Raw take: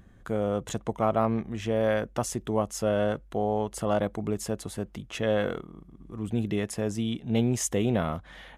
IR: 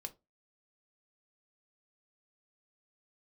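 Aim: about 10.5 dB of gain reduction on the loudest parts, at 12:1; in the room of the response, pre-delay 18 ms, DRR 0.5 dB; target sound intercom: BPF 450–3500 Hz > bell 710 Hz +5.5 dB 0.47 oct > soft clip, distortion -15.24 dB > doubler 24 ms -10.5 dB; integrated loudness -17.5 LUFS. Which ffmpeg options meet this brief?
-filter_complex "[0:a]acompressor=threshold=-31dB:ratio=12,asplit=2[a][b];[1:a]atrim=start_sample=2205,adelay=18[c];[b][c]afir=irnorm=-1:irlink=0,volume=3dB[d];[a][d]amix=inputs=2:normalize=0,highpass=450,lowpass=3.5k,equalizer=f=710:t=o:w=0.47:g=5.5,asoftclip=threshold=-26.5dB,asplit=2[e][f];[f]adelay=24,volume=-10.5dB[g];[e][g]amix=inputs=2:normalize=0,volume=20dB"

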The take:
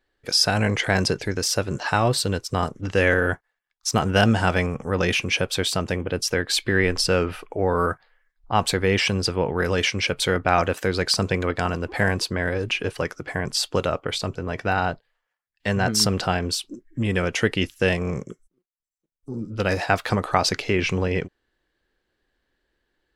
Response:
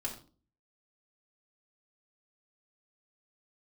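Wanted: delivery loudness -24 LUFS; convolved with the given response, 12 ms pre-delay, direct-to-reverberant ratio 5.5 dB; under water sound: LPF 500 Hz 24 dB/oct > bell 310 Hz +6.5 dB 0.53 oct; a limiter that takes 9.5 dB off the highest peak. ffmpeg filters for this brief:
-filter_complex "[0:a]alimiter=limit=-11dB:level=0:latency=1,asplit=2[a][b];[1:a]atrim=start_sample=2205,adelay=12[c];[b][c]afir=irnorm=-1:irlink=0,volume=-6.5dB[d];[a][d]amix=inputs=2:normalize=0,lowpass=f=500:w=0.5412,lowpass=f=500:w=1.3066,equalizer=f=310:t=o:w=0.53:g=6.5,volume=2dB"

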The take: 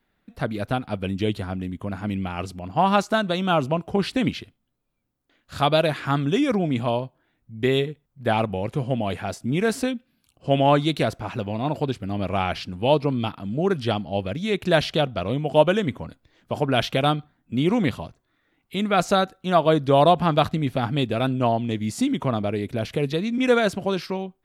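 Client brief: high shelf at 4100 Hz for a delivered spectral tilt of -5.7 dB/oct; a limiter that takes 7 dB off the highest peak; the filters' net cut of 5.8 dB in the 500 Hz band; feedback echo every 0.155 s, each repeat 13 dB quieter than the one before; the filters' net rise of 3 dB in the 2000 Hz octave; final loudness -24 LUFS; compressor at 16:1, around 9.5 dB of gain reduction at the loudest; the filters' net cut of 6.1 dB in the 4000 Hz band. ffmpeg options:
-af "equalizer=f=500:t=o:g=-8,equalizer=f=2k:t=o:g=8.5,equalizer=f=4k:t=o:g=-7.5,highshelf=f=4.1k:g=-8,acompressor=threshold=-24dB:ratio=16,alimiter=limit=-20dB:level=0:latency=1,aecho=1:1:155|310|465:0.224|0.0493|0.0108,volume=7.5dB"

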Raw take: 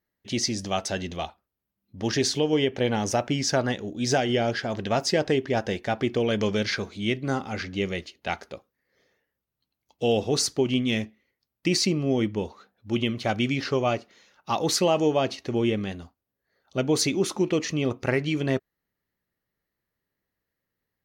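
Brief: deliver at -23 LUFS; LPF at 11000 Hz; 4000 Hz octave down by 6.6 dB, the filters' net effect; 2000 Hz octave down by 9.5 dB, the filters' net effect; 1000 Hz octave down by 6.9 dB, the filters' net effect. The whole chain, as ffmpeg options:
-af "lowpass=11k,equalizer=f=1k:t=o:g=-9,equalizer=f=2k:t=o:g=-8,equalizer=f=4k:t=o:g=-6,volume=5dB"

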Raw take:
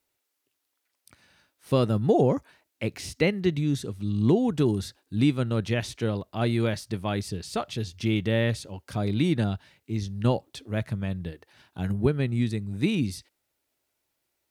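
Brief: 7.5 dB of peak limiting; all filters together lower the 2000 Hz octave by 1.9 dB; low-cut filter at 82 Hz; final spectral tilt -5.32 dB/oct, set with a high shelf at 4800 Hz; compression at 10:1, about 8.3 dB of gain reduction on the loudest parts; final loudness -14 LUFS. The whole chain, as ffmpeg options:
-af "highpass=82,equalizer=f=2k:t=o:g=-4,highshelf=f=4.8k:g=8.5,acompressor=threshold=-25dB:ratio=10,volume=19.5dB,alimiter=limit=-2dB:level=0:latency=1"

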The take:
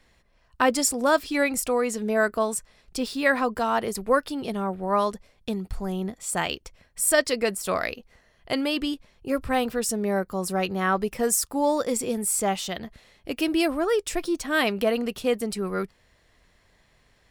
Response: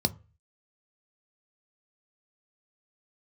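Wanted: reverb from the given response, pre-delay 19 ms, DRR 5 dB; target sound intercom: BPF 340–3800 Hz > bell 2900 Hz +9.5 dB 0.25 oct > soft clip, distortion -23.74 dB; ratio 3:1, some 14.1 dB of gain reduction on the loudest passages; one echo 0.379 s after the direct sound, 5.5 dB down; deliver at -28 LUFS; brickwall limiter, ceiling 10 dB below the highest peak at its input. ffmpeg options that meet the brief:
-filter_complex "[0:a]acompressor=threshold=-35dB:ratio=3,alimiter=level_in=3dB:limit=-24dB:level=0:latency=1,volume=-3dB,aecho=1:1:379:0.531,asplit=2[a][b];[1:a]atrim=start_sample=2205,adelay=19[c];[b][c]afir=irnorm=-1:irlink=0,volume=-12.5dB[d];[a][d]amix=inputs=2:normalize=0,highpass=340,lowpass=3.8k,equalizer=f=2.9k:t=o:w=0.25:g=9.5,asoftclip=threshold=-24dB,volume=9.5dB"

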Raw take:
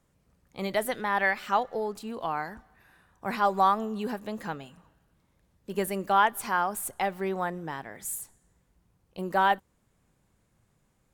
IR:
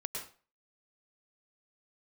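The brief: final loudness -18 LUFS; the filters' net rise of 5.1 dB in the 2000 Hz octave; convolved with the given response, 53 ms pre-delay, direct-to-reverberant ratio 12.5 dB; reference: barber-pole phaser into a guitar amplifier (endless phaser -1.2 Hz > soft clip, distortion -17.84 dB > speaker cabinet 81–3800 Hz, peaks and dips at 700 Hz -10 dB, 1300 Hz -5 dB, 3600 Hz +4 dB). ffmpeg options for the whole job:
-filter_complex "[0:a]equalizer=f=2k:t=o:g=7.5,asplit=2[a][b];[1:a]atrim=start_sample=2205,adelay=53[c];[b][c]afir=irnorm=-1:irlink=0,volume=-13.5dB[d];[a][d]amix=inputs=2:normalize=0,asplit=2[e][f];[f]afreqshift=-1.2[g];[e][g]amix=inputs=2:normalize=1,asoftclip=threshold=-14dB,highpass=81,equalizer=f=700:t=q:w=4:g=-10,equalizer=f=1.3k:t=q:w=4:g=-5,equalizer=f=3.6k:t=q:w=4:g=4,lowpass=f=3.8k:w=0.5412,lowpass=f=3.8k:w=1.3066,volume=14.5dB"

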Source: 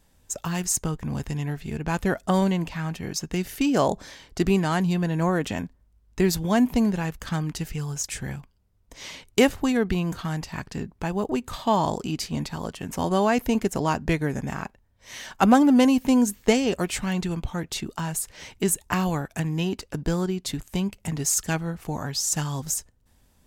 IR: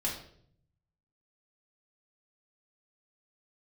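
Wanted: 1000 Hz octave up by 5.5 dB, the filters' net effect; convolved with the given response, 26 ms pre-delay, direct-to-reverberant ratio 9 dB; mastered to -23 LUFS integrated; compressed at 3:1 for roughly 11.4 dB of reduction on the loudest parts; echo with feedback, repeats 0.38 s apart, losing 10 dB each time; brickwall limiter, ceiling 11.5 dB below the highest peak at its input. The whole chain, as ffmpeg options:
-filter_complex "[0:a]equalizer=f=1k:t=o:g=7,acompressor=threshold=-26dB:ratio=3,alimiter=limit=-21dB:level=0:latency=1,aecho=1:1:380|760|1140|1520:0.316|0.101|0.0324|0.0104,asplit=2[a][b];[1:a]atrim=start_sample=2205,adelay=26[c];[b][c]afir=irnorm=-1:irlink=0,volume=-13.5dB[d];[a][d]amix=inputs=2:normalize=0,volume=8dB"

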